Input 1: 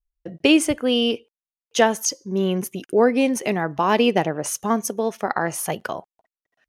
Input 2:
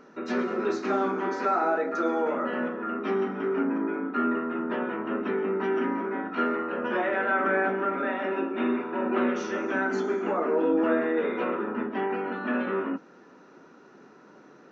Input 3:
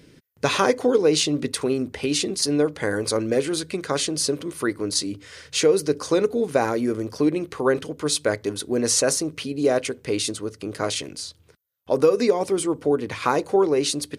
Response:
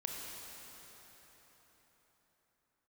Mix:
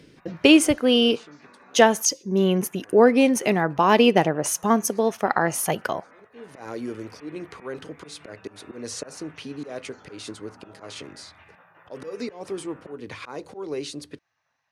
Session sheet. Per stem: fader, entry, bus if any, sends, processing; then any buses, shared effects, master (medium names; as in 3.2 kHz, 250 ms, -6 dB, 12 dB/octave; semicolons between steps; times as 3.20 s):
+1.5 dB, 0.00 s, no send, none
-12.0 dB, 0.00 s, muted 2.03–2.60 s, no send, spectral gate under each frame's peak -15 dB weak; peak limiter -30.5 dBFS, peak gain reduction 7.5 dB
-7.5 dB, 0.00 s, no send, treble shelf 7.8 kHz -10.5 dB; slow attack 215 ms; three bands compressed up and down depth 40%; auto duck -23 dB, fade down 1.85 s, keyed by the first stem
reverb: none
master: none